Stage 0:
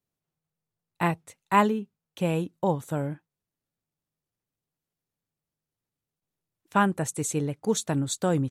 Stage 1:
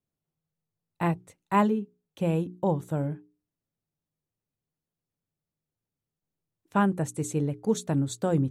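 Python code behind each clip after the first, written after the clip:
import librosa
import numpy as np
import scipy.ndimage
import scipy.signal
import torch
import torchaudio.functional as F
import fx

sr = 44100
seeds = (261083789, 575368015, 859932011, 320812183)

y = fx.tilt_shelf(x, sr, db=4.5, hz=780.0)
y = fx.hum_notches(y, sr, base_hz=60, count=7)
y = y * 10.0 ** (-2.5 / 20.0)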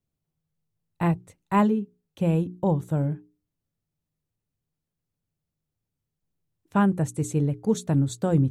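y = fx.low_shelf(x, sr, hz=140.0, db=11.0)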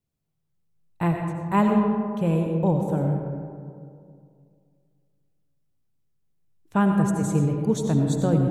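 y = fx.rev_freeverb(x, sr, rt60_s=2.3, hf_ratio=0.35, predelay_ms=50, drr_db=2.5)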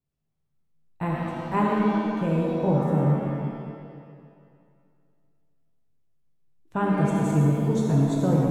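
y = fx.high_shelf(x, sr, hz=4300.0, db=-8.0)
y = fx.rev_shimmer(y, sr, seeds[0], rt60_s=1.4, semitones=7, shimmer_db=-8, drr_db=-0.5)
y = y * 10.0 ** (-3.5 / 20.0)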